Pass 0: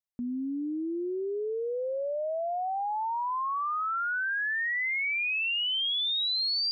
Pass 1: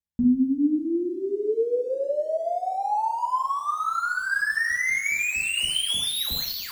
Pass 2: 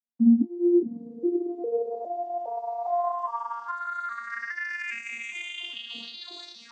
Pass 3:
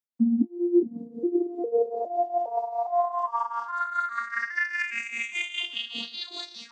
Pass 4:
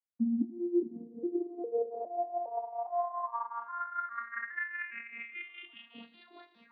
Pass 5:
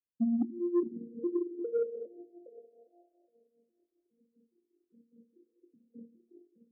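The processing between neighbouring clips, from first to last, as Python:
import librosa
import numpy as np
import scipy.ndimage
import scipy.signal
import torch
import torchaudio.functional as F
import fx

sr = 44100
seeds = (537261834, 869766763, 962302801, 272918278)

y1 = scipy.signal.medfilt(x, 9)
y1 = fx.bass_treble(y1, sr, bass_db=15, treble_db=7)
y1 = fx.rev_double_slope(y1, sr, seeds[0], early_s=0.61, late_s=2.7, knee_db=-18, drr_db=-2.5)
y2 = fx.vocoder_arp(y1, sr, chord='bare fifth', root=58, every_ms=409)
y2 = fx.doubler(y2, sr, ms=23.0, db=-11.0)
y2 = F.gain(torch.from_numpy(y2), -2.0).numpy()
y3 = fx.rider(y2, sr, range_db=3, speed_s=0.5)
y3 = y3 * (1.0 - 0.73 / 2.0 + 0.73 / 2.0 * np.cos(2.0 * np.pi * 5.0 * (np.arange(len(y3)) / sr)))
y3 = F.gain(torch.from_numpy(y3), 4.5).numpy()
y4 = fx.spec_repair(y3, sr, seeds[1], start_s=5.32, length_s=0.54, low_hz=390.0, high_hz=1300.0, source='both')
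y4 = scipy.signal.sosfilt(scipy.signal.butter(4, 2100.0, 'lowpass', fs=sr, output='sos'), y4)
y4 = fx.echo_feedback(y4, sr, ms=82, feedback_pct=51, wet_db=-18.5)
y4 = F.gain(torch.from_numpy(y4), -8.0).numpy()
y5 = scipy.signal.sosfilt(scipy.signal.butter(16, 530.0, 'lowpass', fs=sr, output='sos'), y4)
y5 = 10.0 ** (-22.0 / 20.0) * np.tanh(y5 / 10.0 ** (-22.0 / 20.0))
y5 = F.gain(torch.from_numpy(y5), 2.0).numpy()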